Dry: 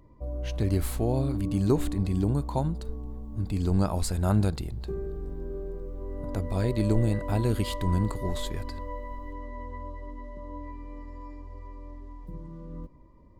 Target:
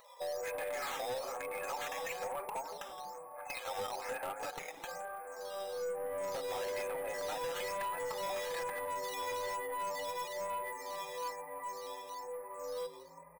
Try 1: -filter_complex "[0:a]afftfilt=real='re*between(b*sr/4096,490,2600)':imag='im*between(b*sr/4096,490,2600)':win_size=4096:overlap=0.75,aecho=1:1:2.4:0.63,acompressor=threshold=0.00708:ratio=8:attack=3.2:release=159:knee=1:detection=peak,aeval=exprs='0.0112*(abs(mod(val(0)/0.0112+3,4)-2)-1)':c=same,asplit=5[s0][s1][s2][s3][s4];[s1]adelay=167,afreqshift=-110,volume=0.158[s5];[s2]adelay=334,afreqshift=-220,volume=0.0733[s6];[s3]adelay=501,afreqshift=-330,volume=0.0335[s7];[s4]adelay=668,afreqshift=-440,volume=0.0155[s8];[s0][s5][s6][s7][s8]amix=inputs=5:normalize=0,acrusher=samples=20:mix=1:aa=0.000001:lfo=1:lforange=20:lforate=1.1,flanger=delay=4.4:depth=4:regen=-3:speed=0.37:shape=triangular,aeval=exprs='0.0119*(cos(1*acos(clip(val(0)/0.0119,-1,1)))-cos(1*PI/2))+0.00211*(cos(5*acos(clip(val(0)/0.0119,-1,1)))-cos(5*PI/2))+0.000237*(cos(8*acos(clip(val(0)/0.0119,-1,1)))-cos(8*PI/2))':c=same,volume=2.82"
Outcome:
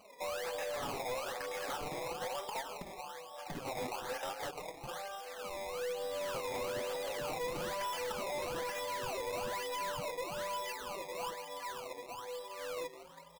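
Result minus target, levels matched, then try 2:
decimation with a swept rate: distortion +11 dB
-filter_complex "[0:a]afftfilt=real='re*between(b*sr/4096,490,2600)':imag='im*between(b*sr/4096,490,2600)':win_size=4096:overlap=0.75,aecho=1:1:2.4:0.63,acompressor=threshold=0.00708:ratio=8:attack=3.2:release=159:knee=1:detection=peak,aeval=exprs='0.0112*(abs(mod(val(0)/0.0112+3,4)-2)-1)':c=same,asplit=5[s0][s1][s2][s3][s4];[s1]adelay=167,afreqshift=-110,volume=0.158[s5];[s2]adelay=334,afreqshift=-220,volume=0.0733[s6];[s3]adelay=501,afreqshift=-330,volume=0.0335[s7];[s4]adelay=668,afreqshift=-440,volume=0.0155[s8];[s0][s5][s6][s7][s8]amix=inputs=5:normalize=0,acrusher=samples=7:mix=1:aa=0.000001:lfo=1:lforange=7:lforate=1.1,flanger=delay=4.4:depth=4:regen=-3:speed=0.37:shape=triangular,aeval=exprs='0.0119*(cos(1*acos(clip(val(0)/0.0119,-1,1)))-cos(1*PI/2))+0.00211*(cos(5*acos(clip(val(0)/0.0119,-1,1)))-cos(5*PI/2))+0.000237*(cos(8*acos(clip(val(0)/0.0119,-1,1)))-cos(8*PI/2))':c=same,volume=2.82"

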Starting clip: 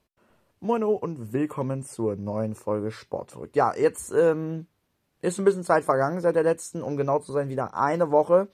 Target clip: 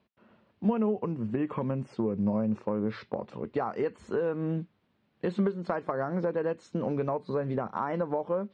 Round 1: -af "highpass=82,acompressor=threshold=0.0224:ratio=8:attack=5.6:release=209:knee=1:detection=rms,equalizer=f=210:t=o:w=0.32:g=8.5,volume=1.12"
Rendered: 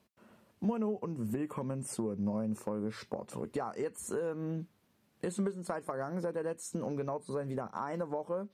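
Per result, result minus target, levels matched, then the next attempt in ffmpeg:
compression: peak gain reduction +6 dB; 4 kHz band +5.0 dB
-af "highpass=82,acompressor=threshold=0.0501:ratio=8:attack=5.6:release=209:knee=1:detection=rms,equalizer=f=210:t=o:w=0.32:g=8.5,volume=1.12"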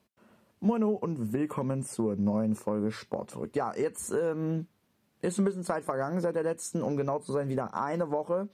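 4 kHz band +3.5 dB
-af "highpass=82,acompressor=threshold=0.0501:ratio=8:attack=5.6:release=209:knee=1:detection=rms,lowpass=f=4000:w=0.5412,lowpass=f=4000:w=1.3066,equalizer=f=210:t=o:w=0.32:g=8.5,volume=1.12"

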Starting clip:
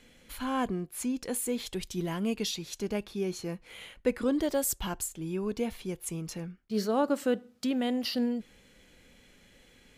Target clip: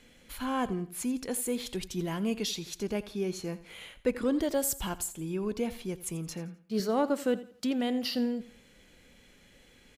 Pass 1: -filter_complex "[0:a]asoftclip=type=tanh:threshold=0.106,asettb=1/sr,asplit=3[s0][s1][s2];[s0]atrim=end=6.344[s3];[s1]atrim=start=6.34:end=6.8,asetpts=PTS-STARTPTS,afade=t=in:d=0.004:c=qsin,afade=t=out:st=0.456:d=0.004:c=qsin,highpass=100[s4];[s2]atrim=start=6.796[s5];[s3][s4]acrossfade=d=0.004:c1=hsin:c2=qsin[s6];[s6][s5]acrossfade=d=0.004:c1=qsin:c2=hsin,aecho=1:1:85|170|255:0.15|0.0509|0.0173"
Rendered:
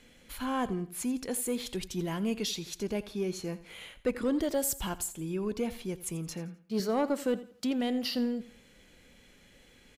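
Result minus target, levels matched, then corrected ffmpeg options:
saturation: distortion +11 dB
-filter_complex "[0:a]asoftclip=type=tanh:threshold=0.224,asettb=1/sr,asplit=3[s0][s1][s2];[s0]atrim=end=6.344[s3];[s1]atrim=start=6.34:end=6.8,asetpts=PTS-STARTPTS,afade=t=in:d=0.004:c=qsin,afade=t=out:st=0.456:d=0.004:c=qsin,highpass=100[s4];[s2]atrim=start=6.796[s5];[s3][s4]acrossfade=d=0.004:c1=hsin:c2=qsin[s6];[s6][s5]acrossfade=d=0.004:c1=qsin:c2=hsin,aecho=1:1:85|170|255:0.15|0.0509|0.0173"

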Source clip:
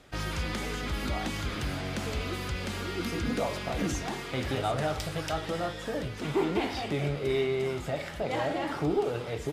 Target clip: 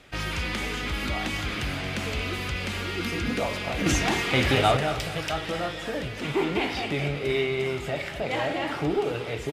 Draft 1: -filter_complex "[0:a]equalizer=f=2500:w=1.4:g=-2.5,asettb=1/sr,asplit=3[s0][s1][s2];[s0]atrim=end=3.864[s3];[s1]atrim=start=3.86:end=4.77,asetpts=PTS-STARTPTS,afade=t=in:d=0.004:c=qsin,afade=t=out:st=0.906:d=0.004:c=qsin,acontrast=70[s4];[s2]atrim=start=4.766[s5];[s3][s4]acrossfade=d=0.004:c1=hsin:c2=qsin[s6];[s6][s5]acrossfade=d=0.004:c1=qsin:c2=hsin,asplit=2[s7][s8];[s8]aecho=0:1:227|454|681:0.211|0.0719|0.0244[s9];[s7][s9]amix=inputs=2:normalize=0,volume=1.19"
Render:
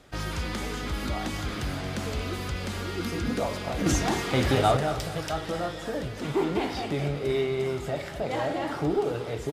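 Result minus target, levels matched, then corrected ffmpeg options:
2 kHz band -4.5 dB
-filter_complex "[0:a]equalizer=f=2500:w=1.4:g=7,asettb=1/sr,asplit=3[s0][s1][s2];[s0]atrim=end=3.864[s3];[s1]atrim=start=3.86:end=4.77,asetpts=PTS-STARTPTS,afade=t=in:d=0.004:c=qsin,afade=t=out:st=0.906:d=0.004:c=qsin,acontrast=70[s4];[s2]atrim=start=4.766[s5];[s3][s4]acrossfade=d=0.004:c1=hsin:c2=qsin[s6];[s6][s5]acrossfade=d=0.004:c1=qsin:c2=hsin,asplit=2[s7][s8];[s8]aecho=0:1:227|454|681:0.211|0.0719|0.0244[s9];[s7][s9]amix=inputs=2:normalize=0,volume=1.19"

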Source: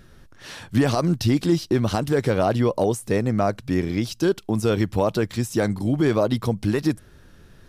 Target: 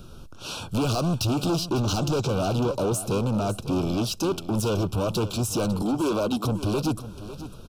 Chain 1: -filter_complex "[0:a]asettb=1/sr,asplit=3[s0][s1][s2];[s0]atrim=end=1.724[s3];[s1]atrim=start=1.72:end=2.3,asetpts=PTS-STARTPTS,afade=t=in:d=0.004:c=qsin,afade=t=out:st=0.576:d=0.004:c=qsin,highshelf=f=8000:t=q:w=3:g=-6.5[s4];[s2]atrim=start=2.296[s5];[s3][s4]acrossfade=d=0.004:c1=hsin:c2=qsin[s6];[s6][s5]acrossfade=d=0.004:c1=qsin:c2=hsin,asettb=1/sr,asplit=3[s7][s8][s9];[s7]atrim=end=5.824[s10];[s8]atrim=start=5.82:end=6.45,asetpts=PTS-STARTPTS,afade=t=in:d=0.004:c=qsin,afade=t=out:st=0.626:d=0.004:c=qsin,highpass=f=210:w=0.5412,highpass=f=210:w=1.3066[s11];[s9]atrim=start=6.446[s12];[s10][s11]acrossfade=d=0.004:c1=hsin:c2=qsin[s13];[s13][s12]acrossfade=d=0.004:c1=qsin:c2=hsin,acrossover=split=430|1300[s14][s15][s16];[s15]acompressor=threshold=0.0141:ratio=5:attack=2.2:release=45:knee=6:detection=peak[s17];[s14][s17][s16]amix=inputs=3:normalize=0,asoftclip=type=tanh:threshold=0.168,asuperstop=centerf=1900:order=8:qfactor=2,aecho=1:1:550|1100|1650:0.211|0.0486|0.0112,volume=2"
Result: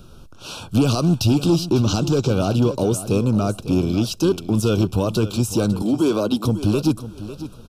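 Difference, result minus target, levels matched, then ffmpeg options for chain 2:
saturation: distortion -11 dB; compression: peak gain reduction +5.5 dB
-filter_complex "[0:a]asettb=1/sr,asplit=3[s0][s1][s2];[s0]atrim=end=1.724[s3];[s1]atrim=start=1.72:end=2.3,asetpts=PTS-STARTPTS,afade=t=in:d=0.004:c=qsin,afade=t=out:st=0.576:d=0.004:c=qsin,highshelf=f=8000:t=q:w=3:g=-6.5[s4];[s2]atrim=start=2.296[s5];[s3][s4]acrossfade=d=0.004:c1=hsin:c2=qsin[s6];[s6][s5]acrossfade=d=0.004:c1=qsin:c2=hsin,asettb=1/sr,asplit=3[s7][s8][s9];[s7]atrim=end=5.824[s10];[s8]atrim=start=5.82:end=6.45,asetpts=PTS-STARTPTS,afade=t=in:d=0.004:c=qsin,afade=t=out:st=0.626:d=0.004:c=qsin,highpass=f=210:w=0.5412,highpass=f=210:w=1.3066[s11];[s9]atrim=start=6.446[s12];[s10][s11]acrossfade=d=0.004:c1=hsin:c2=qsin[s13];[s13][s12]acrossfade=d=0.004:c1=qsin:c2=hsin,acrossover=split=430|1300[s14][s15][s16];[s15]acompressor=threshold=0.0316:ratio=5:attack=2.2:release=45:knee=6:detection=peak[s17];[s14][s17][s16]amix=inputs=3:normalize=0,asoftclip=type=tanh:threshold=0.0422,asuperstop=centerf=1900:order=8:qfactor=2,aecho=1:1:550|1100|1650:0.211|0.0486|0.0112,volume=2"

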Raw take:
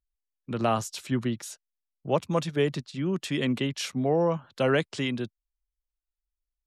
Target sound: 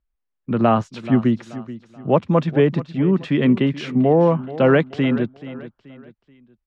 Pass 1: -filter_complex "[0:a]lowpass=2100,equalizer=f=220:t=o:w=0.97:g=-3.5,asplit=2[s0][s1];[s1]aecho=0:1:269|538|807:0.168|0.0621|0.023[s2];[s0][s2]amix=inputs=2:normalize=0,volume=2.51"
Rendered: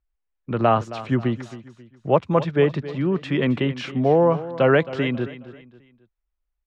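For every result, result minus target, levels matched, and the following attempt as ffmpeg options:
echo 162 ms early; 250 Hz band -3.0 dB
-filter_complex "[0:a]lowpass=2100,equalizer=f=220:t=o:w=0.97:g=-3.5,asplit=2[s0][s1];[s1]aecho=0:1:431|862|1293:0.168|0.0621|0.023[s2];[s0][s2]amix=inputs=2:normalize=0,volume=2.51"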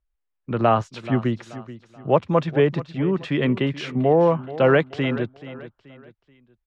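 250 Hz band -3.0 dB
-filter_complex "[0:a]lowpass=2100,equalizer=f=220:t=o:w=0.97:g=4.5,asplit=2[s0][s1];[s1]aecho=0:1:431|862|1293:0.168|0.0621|0.023[s2];[s0][s2]amix=inputs=2:normalize=0,volume=2.51"

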